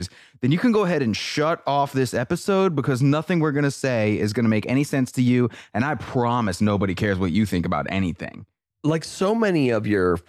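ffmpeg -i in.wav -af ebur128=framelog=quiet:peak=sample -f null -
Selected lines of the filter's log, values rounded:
Integrated loudness:
  I:         -22.0 LUFS
  Threshold: -32.2 LUFS
Loudness range:
  LRA:         2.3 LU
  Threshold: -42.2 LUFS
  LRA low:   -23.6 LUFS
  LRA high:  -21.3 LUFS
Sample peak:
  Peak:      -10.3 dBFS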